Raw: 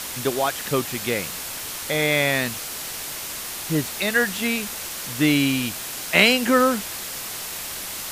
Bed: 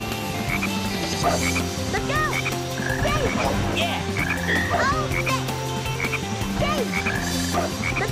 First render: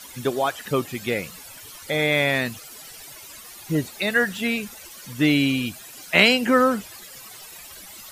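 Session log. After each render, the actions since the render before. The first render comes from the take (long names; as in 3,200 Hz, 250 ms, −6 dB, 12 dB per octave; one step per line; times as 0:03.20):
broadband denoise 15 dB, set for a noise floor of −32 dBFS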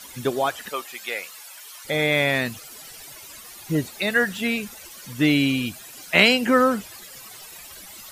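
0:00.69–0:01.85: high-pass filter 760 Hz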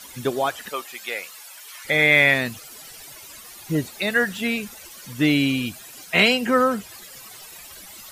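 0:01.68–0:02.34: parametric band 2,000 Hz +8.5 dB 0.85 octaves
0:06.04–0:06.89: notch comb filter 290 Hz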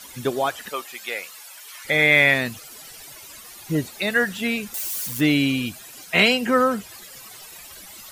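0:04.74–0:05.21: spike at every zero crossing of −25 dBFS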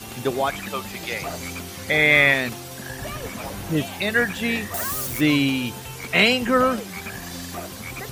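mix in bed −10.5 dB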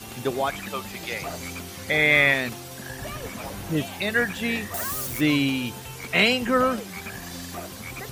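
level −2.5 dB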